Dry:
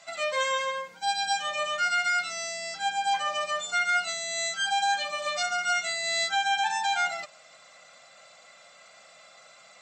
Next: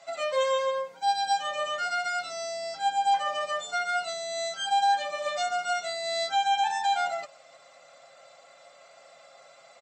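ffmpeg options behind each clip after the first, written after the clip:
-af "equalizer=f=560:w=0.75:g=9.5,aecho=1:1:7.3:0.47,volume=0.531"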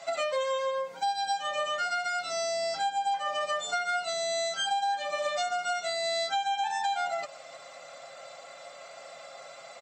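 -af "acompressor=threshold=0.0178:ratio=5,volume=2.24"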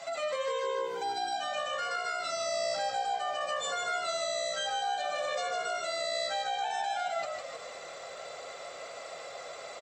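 -filter_complex "[0:a]alimiter=level_in=1.78:limit=0.0631:level=0:latency=1:release=91,volume=0.562,asplit=2[s0][s1];[s1]asplit=5[s2][s3][s4][s5][s6];[s2]adelay=153,afreqshift=-62,volume=0.596[s7];[s3]adelay=306,afreqshift=-124,volume=0.257[s8];[s4]adelay=459,afreqshift=-186,volume=0.11[s9];[s5]adelay=612,afreqshift=-248,volume=0.0473[s10];[s6]adelay=765,afreqshift=-310,volume=0.0204[s11];[s7][s8][s9][s10][s11]amix=inputs=5:normalize=0[s12];[s0][s12]amix=inputs=2:normalize=0,volume=1.19"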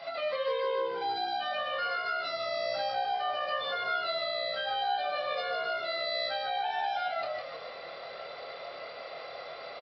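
-filter_complex "[0:a]asplit=2[s0][s1];[s1]adelay=26,volume=0.531[s2];[s0][s2]amix=inputs=2:normalize=0,aresample=11025,aresample=44100"

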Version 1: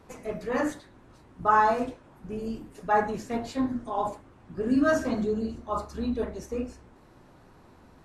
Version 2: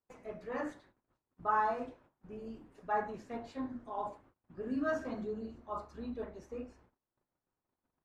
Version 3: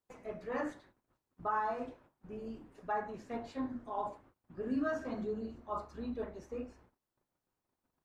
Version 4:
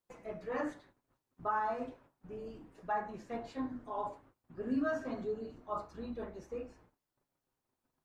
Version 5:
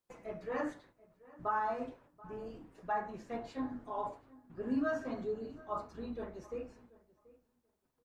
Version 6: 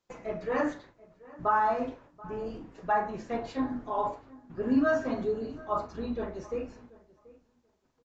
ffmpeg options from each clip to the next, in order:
-af "agate=range=0.0398:threshold=0.00316:ratio=16:detection=peak,lowpass=f=1900:p=1,lowshelf=f=420:g=-6.5,volume=0.422"
-af "alimiter=level_in=1.33:limit=0.0631:level=0:latency=1:release=324,volume=0.75,volume=1.19"
-af "flanger=delay=5.6:depth=2.4:regen=-49:speed=0.32:shape=triangular,volume=1.58"
-filter_complex "[0:a]asplit=2[s0][s1];[s1]adelay=733,lowpass=f=2200:p=1,volume=0.0891,asplit=2[s2][s3];[s3]adelay=733,lowpass=f=2200:p=1,volume=0.15[s4];[s0][s2][s4]amix=inputs=3:normalize=0"
-filter_complex "[0:a]asplit=2[s0][s1];[s1]adelay=41,volume=0.211[s2];[s0][s2]amix=inputs=2:normalize=0,aresample=16000,aresample=44100,volume=2.51"

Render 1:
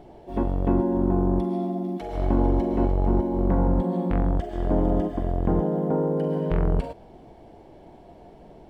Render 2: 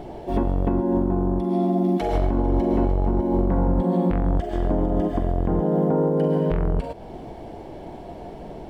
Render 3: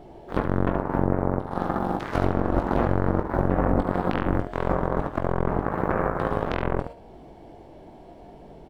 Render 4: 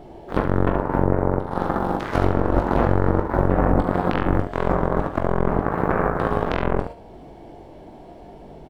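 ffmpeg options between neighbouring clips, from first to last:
-filter_complex "[0:a]asplit=2[s0][s1];[s1]acompressor=threshold=0.0355:ratio=6,volume=1.12[s2];[s0][s2]amix=inputs=2:normalize=0,alimiter=limit=0.168:level=0:latency=1:release=327,volume=1.58"
-af "aeval=exprs='0.266*(cos(1*acos(clip(val(0)/0.266,-1,1)))-cos(1*PI/2))+0.119*(cos(3*acos(clip(val(0)/0.266,-1,1)))-cos(3*PI/2))':c=same,aecho=1:1:21|74:0.398|0.355"
-filter_complex "[0:a]asplit=2[s0][s1];[s1]adelay=41,volume=0.266[s2];[s0][s2]amix=inputs=2:normalize=0,volume=1.5"

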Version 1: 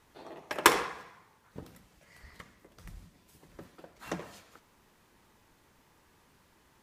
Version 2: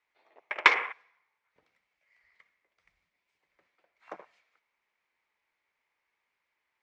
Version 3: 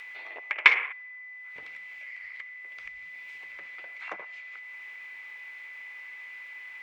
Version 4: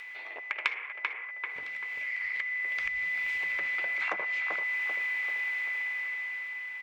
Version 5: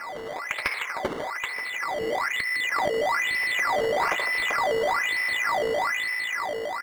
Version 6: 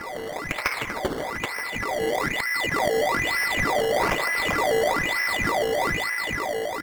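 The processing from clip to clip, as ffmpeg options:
-filter_complex "[0:a]acrossover=split=480 6100:gain=0.126 1 0.0708[s0][s1][s2];[s0][s1][s2]amix=inputs=3:normalize=0,afwtdn=0.01,equalizer=f=2200:t=o:w=0.42:g=13.5,volume=0.841"
-af "equalizer=f=2400:t=o:w=1.4:g=13.5,acompressor=mode=upward:threshold=0.112:ratio=2.5,aeval=exprs='val(0)+0.0224*sin(2*PI*2000*n/s)':c=same,volume=0.376"
-filter_complex "[0:a]dynaudnorm=f=260:g=11:m=3.98,asplit=2[s0][s1];[s1]adelay=389,lowpass=f=2000:p=1,volume=0.422,asplit=2[s2][s3];[s3]adelay=389,lowpass=f=2000:p=1,volume=0.45,asplit=2[s4][s5];[s5]adelay=389,lowpass=f=2000:p=1,volume=0.45,asplit=2[s6][s7];[s7]adelay=389,lowpass=f=2000:p=1,volume=0.45,asplit=2[s8][s9];[s9]adelay=389,lowpass=f=2000:p=1,volume=0.45[s10];[s2][s4][s6][s8][s10]amix=inputs=5:normalize=0[s11];[s0][s11]amix=inputs=2:normalize=0,acompressor=threshold=0.0355:ratio=4"
-filter_complex "[0:a]asplit=7[s0][s1][s2][s3][s4][s5][s6];[s1]adelay=154,afreqshift=-55,volume=0.299[s7];[s2]adelay=308,afreqshift=-110,volume=0.153[s8];[s3]adelay=462,afreqshift=-165,volume=0.0776[s9];[s4]adelay=616,afreqshift=-220,volume=0.0398[s10];[s5]adelay=770,afreqshift=-275,volume=0.0202[s11];[s6]adelay=924,afreqshift=-330,volume=0.0104[s12];[s0][s7][s8][s9][s10][s11][s12]amix=inputs=7:normalize=0,acrusher=samples=12:mix=1:aa=0.000001:lfo=1:lforange=12:lforate=1.1,asplit=2[s13][s14];[s14]highpass=f=720:p=1,volume=5.01,asoftclip=type=tanh:threshold=0.266[s15];[s13][s15]amix=inputs=2:normalize=0,lowpass=f=1300:p=1,volume=0.501,volume=1.5"
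-filter_complex "[0:a]asplit=2[s0][s1];[s1]acrusher=samples=24:mix=1:aa=0.000001:lfo=1:lforange=24:lforate=1.1,volume=0.668[s2];[s0][s2]amix=inputs=2:normalize=0" -ar 48000 -c:a aac -b:a 192k

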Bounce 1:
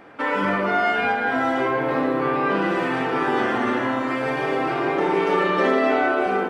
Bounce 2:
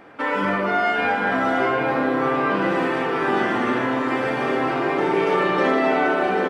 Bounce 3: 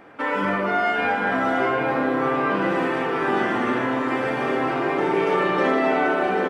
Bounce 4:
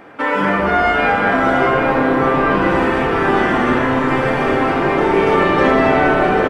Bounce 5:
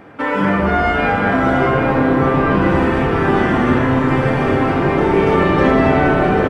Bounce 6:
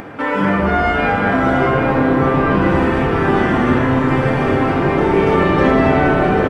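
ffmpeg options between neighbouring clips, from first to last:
-af "aecho=1:1:790:0.473"
-af "equalizer=f=4400:t=o:w=0.77:g=-2.5,volume=0.891"
-filter_complex "[0:a]asplit=9[s0][s1][s2][s3][s4][s5][s6][s7][s8];[s1]adelay=203,afreqshift=-120,volume=0.316[s9];[s2]adelay=406,afreqshift=-240,volume=0.195[s10];[s3]adelay=609,afreqshift=-360,volume=0.122[s11];[s4]adelay=812,afreqshift=-480,volume=0.075[s12];[s5]adelay=1015,afreqshift=-600,volume=0.0468[s13];[s6]adelay=1218,afreqshift=-720,volume=0.0288[s14];[s7]adelay=1421,afreqshift=-840,volume=0.018[s15];[s8]adelay=1624,afreqshift=-960,volume=0.0111[s16];[s0][s9][s10][s11][s12][s13][s14][s15][s16]amix=inputs=9:normalize=0,volume=2.11"
-af "equalizer=f=91:t=o:w=2.8:g=10.5,volume=0.75"
-af "acompressor=mode=upward:threshold=0.0562:ratio=2.5"

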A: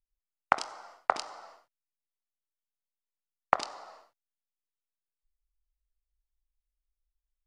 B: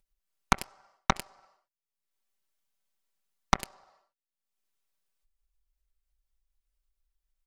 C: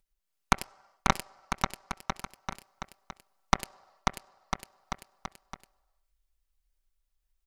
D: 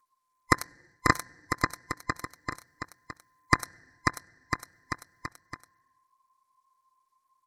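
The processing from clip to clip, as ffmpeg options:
-af "acompressor=mode=upward:threshold=0.00316:ratio=2.5,aecho=1:1:5.2:0.6,aeval=exprs='0.631*(cos(1*acos(clip(val(0)/0.631,-1,1)))-cos(1*PI/2))+0.00891*(cos(5*acos(clip(val(0)/0.631,-1,1)))-cos(5*PI/2))+0.2*(cos(6*acos(clip(val(0)/0.631,-1,1)))-cos(6*PI/2))+0.0708*(cos(7*acos(clip(val(0)/0.631,-1,1)))-cos(7*PI/2))':c=same,volume=0.668"
-af "aecho=1:1:540|999|1389|1721|2003:0.631|0.398|0.251|0.158|0.1"
-af "afftfilt=real='real(if(lt(b,960),b+48*(1-2*mod(floor(b/48),2)),b),0)':imag='imag(if(lt(b,960),b+48*(1-2*mod(floor(b/48),2)),b),0)':win_size=2048:overlap=0.75,asuperstop=centerf=3100:order=20:qfactor=2.1,volume=1.33" -ar 48000 -c:a sbc -b:a 128k

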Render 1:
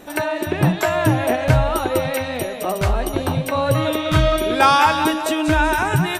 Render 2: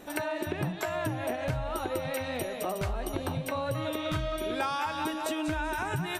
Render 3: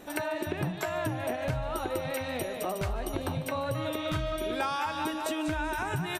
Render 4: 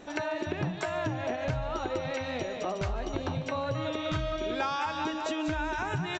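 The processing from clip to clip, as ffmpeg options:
-af "acompressor=threshold=0.0794:ratio=6,volume=0.473"
-af "aecho=1:1:148:0.119"
-af "aresample=16000,aresample=44100"

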